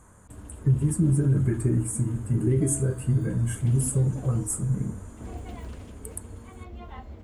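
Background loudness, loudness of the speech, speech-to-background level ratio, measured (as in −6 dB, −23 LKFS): −42.0 LKFS, −25.5 LKFS, 16.5 dB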